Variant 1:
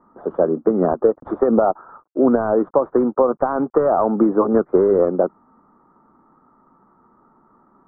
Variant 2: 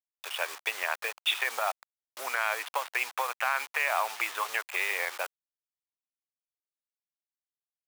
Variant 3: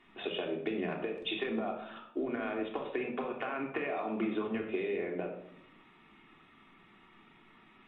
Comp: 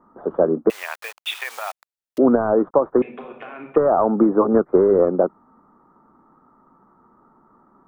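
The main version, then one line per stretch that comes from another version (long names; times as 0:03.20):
1
0:00.70–0:02.18: punch in from 2
0:03.02–0:03.76: punch in from 3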